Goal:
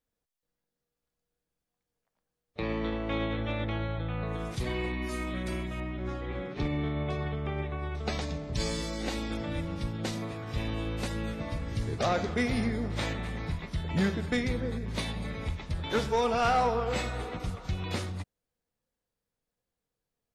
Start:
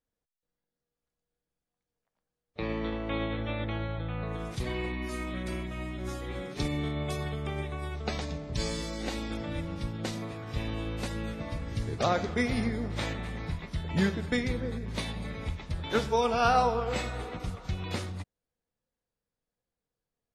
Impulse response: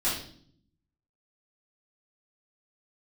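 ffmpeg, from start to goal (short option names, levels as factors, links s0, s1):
-filter_complex "[0:a]asoftclip=type=tanh:threshold=0.0891,asettb=1/sr,asplit=3[s0][s1][s2];[s0]atrim=end=5.804[s3];[s1]atrim=start=5.8:end=7.95,asetpts=PTS-STARTPTS,afade=t=in:d=0.004:c=qsin,afade=t=out:st=2.146:d=0.004:c=qsin,lowpass=2800[s4];[s2]atrim=start=7.946[s5];[s3][s4]acrossfade=d=0.004:c1=hsin:c2=qsin[s6];[s6][s5]acrossfade=d=0.004:c1=qsin:c2=hsin,volume=1.19"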